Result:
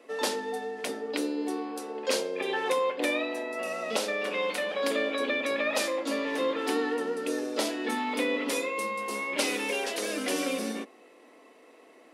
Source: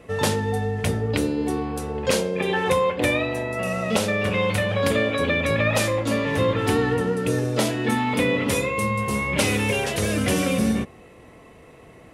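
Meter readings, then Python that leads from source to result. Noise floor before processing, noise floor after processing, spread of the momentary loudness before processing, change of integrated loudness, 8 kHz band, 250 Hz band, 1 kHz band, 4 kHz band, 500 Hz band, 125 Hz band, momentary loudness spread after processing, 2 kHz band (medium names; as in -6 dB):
-48 dBFS, -55 dBFS, 4 LU, -7.0 dB, -6.0 dB, -9.0 dB, -6.0 dB, -4.5 dB, -6.5 dB, under -30 dB, 6 LU, -6.5 dB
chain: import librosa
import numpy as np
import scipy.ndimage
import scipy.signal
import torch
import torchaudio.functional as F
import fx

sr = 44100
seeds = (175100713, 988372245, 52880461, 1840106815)

y = scipy.signal.sosfilt(scipy.signal.cheby1(4, 1.0, 260.0, 'highpass', fs=sr, output='sos'), x)
y = fx.peak_eq(y, sr, hz=4700.0, db=5.0, octaves=0.69)
y = y * 10.0 ** (-6.0 / 20.0)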